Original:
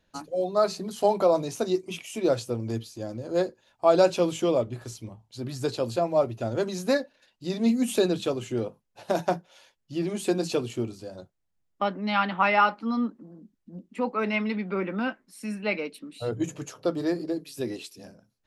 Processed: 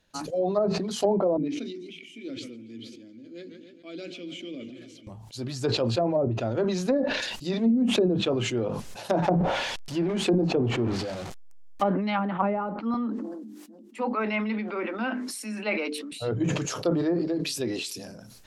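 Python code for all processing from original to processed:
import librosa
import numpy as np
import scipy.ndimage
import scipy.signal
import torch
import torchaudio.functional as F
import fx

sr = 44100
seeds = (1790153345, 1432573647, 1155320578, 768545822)

y = fx.chain(x, sr, fx.vowel_filter(vowel='i'),
    fx.hum_notches(base_hz=60, count=7),
    fx.echo_warbled(ms=139, feedback_pct=72, rate_hz=2.8, cents=114, wet_db=-18), at=(1.37, 5.07))
y = fx.chain(y, sr, fx.zero_step(step_db=-36.0),
    fx.peak_eq(hz=780.0, db=4.0, octaves=0.38),
    fx.sustainer(db_per_s=45.0), at=(9.22, 11.84))
y = fx.chain(y, sr, fx.cheby_ripple_highpass(hz=210.0, ripple_db=3),
    fx.hum_notches(base_hz=50, count=9), at=(12.94, 16.12))
y = fx.env_lowpass_down(y, sr, base_hz=460.0, full_db=-19.0)
y = fx.high_shelf(y, sr, hz=2900.0, db=6.5)
y = fx.sustainer(y, sr, db_per_s=33.0)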